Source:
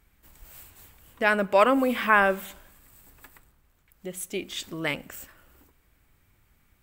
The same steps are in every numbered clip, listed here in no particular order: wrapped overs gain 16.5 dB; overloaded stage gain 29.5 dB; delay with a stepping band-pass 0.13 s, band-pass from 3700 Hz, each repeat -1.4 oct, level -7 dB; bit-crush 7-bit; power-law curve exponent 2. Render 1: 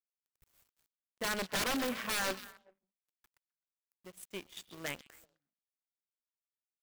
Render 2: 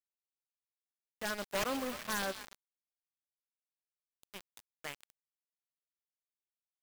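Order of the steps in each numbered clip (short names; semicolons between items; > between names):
wrapped overs > bit-crush > delay with a stepping band-pass > power-law curve > overloaded stage; power-law curve > wrapped overs > overloaded stage > delay with a stepping band-pass > bit-crush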